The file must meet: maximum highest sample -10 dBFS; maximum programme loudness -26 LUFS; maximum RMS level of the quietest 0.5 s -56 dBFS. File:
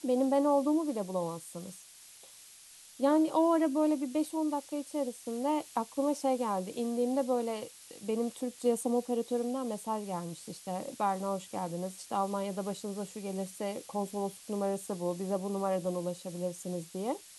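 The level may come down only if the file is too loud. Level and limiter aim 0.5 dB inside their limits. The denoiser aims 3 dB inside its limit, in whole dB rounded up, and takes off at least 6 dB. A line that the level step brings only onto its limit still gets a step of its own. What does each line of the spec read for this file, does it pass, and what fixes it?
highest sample -16.0 dBFS: OK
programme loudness -33.0 LUFS: OK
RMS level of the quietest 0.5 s -54 dBFS: fail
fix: denoiser 6 dB, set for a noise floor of -54 dBFS

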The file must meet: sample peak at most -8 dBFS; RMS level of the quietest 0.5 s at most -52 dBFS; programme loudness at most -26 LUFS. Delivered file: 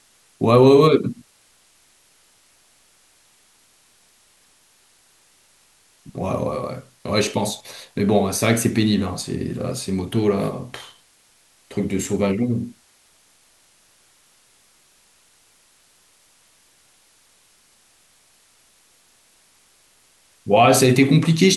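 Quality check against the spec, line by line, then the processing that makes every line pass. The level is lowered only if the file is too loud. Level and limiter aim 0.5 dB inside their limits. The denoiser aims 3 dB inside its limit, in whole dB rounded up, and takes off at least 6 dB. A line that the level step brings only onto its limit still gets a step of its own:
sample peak -3.5 dBFS: fail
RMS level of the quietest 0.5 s -57 dBFS: OK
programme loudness -19.5 LUFS: fail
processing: gain -7 dB

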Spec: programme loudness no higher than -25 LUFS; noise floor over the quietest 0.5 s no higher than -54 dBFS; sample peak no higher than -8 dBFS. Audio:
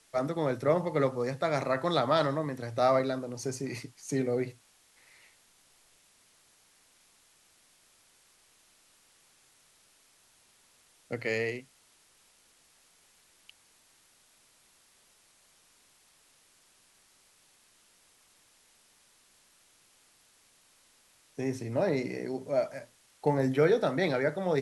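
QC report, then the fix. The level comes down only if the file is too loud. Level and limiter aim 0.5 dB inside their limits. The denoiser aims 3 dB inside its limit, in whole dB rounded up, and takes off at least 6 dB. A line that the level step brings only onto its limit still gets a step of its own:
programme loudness -30.0 LUFS: OK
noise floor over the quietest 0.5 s -64 dBFS: OK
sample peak -12.5 dBFS: OK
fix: none

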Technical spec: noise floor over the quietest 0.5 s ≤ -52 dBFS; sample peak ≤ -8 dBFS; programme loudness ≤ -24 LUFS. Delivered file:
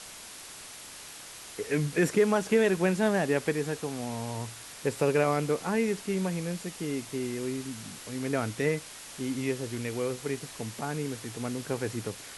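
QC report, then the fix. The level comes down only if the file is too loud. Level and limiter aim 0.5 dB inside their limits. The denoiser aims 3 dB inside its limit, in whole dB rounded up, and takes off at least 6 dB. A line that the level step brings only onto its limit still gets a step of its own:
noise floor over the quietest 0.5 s -45 dBFS: fail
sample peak -13.0 dBFS: OK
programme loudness -30.0 LUFS: OK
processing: denoiser 10 dB, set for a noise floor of -45 dBFS

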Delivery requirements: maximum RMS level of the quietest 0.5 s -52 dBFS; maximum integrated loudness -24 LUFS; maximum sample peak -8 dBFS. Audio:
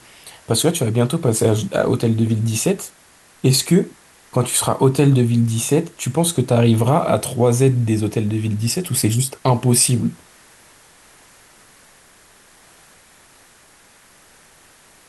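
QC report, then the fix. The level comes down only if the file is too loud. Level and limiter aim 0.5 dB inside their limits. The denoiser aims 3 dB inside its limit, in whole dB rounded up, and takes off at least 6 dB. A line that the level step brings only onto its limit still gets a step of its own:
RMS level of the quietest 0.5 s -50 dBFS: fail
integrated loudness -18.0 LUFS: fail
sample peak -3.5 dBFS: fail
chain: gain -6.5 dB

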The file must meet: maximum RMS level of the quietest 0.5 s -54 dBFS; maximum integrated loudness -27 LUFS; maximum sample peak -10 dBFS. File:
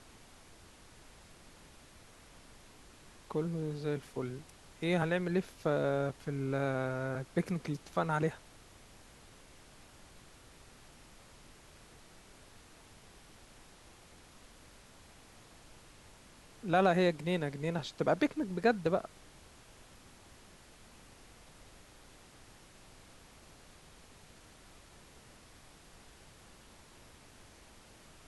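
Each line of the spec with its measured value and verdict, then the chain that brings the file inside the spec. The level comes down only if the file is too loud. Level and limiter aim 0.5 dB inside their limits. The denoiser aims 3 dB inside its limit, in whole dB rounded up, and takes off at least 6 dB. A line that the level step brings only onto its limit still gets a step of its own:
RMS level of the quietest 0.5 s -57 dBFS: OK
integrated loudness -33.5 LUFS: OK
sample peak -14.5 dBFS: OK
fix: none

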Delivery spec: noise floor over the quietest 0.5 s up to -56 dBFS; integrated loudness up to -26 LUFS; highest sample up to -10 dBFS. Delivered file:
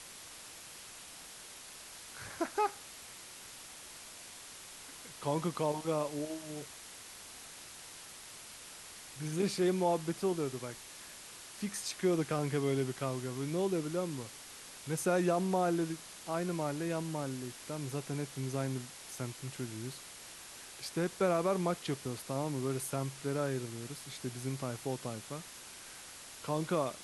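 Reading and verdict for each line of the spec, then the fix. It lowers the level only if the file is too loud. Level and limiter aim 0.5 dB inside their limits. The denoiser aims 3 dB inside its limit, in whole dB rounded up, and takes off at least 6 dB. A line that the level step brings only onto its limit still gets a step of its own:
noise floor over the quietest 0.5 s -50 dBFS: fail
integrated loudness -36.0 LUFS: OK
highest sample -19.0 dBFS: OK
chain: denoiser 9 dB, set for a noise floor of -50 dBFS

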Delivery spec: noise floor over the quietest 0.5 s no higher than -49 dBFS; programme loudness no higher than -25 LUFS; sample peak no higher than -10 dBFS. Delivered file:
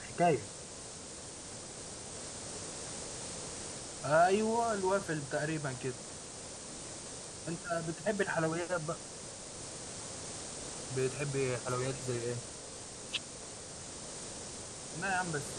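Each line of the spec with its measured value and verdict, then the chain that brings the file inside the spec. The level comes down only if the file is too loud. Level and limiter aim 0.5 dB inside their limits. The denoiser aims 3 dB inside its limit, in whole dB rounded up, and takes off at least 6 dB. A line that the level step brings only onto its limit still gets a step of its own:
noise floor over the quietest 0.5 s -47 dBFS: fail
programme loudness -36.5 LUFS: OK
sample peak -16.5 dBFS: OK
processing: denoiser 6 dB, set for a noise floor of -47 dBFS

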